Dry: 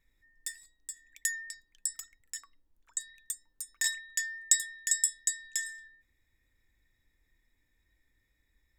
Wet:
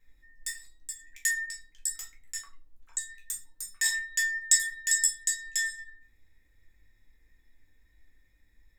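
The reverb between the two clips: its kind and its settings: shoebox room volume 180 m³, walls furnished, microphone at 2.1 m

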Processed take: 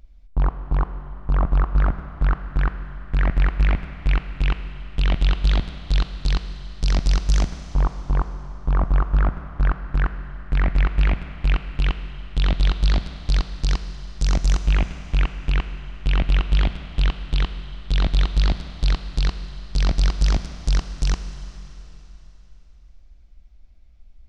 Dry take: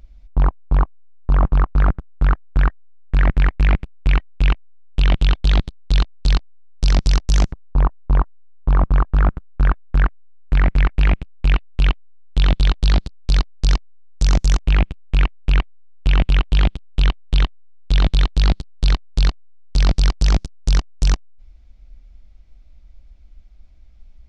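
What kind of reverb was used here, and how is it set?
Schroeder reverb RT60 3.4 s, combs from 33 ms, DRR 9.5 dB; gain -4 dB

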